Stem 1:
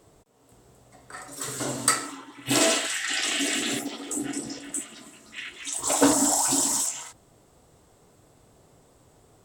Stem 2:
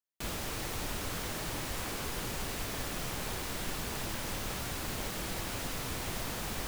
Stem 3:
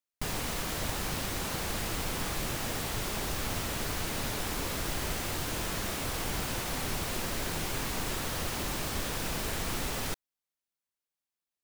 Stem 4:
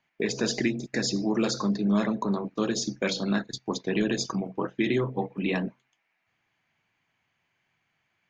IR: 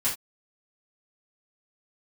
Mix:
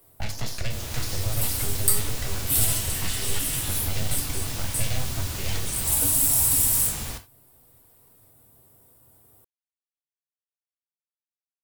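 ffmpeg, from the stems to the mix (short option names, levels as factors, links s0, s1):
-filter_complex "[0:a]aexciter=amount=10:drive=7.4:freq=9900,volume=0.282,asplit=2[s0][s1];[s1]volume=0.473[s2];[1:a]dynaudnorm=f=180:g=5:m=1.68,adelay=500,volume=1,asplit=2[s3][s4];[s4]volume=0.224[s5];[3:a]deesser=0.8,highshelf=f=3800:g=6,aeval=exprs='abs(val(0))':c=same,volume=0.891,asplit=2[s6][s7];[s7]volume=0.251[s8];[4:a]atrim=start_sample=2205[s9];[s2][s5][s8]amix=inputs=3:normalize=0[s10];[s10][s9]afir=irnorm=-1:irlink=0[s11];[s0][s3][s6][s11]amix=inputs=4:normalize=0,equalizer=f=100:t=o:w=0.36:g=9,acrossover=split=150|3000[s12][s13][s14];[s13]acompressor=threshold=0.00891:ratio=2.5[s15];[s12][s15][s14]amix=inputs=3:normalize=0"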